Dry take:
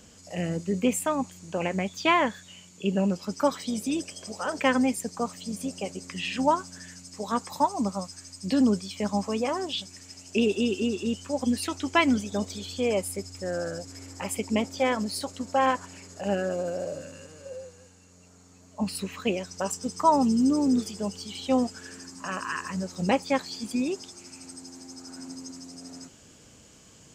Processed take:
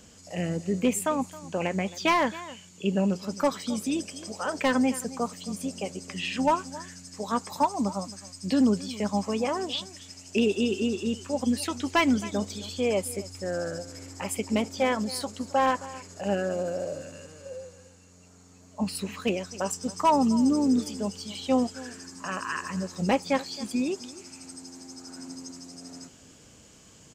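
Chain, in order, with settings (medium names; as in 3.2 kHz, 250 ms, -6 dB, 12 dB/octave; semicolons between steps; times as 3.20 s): echo from a far wall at 46 m, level -18 dB; overload inside the chain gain 15 dB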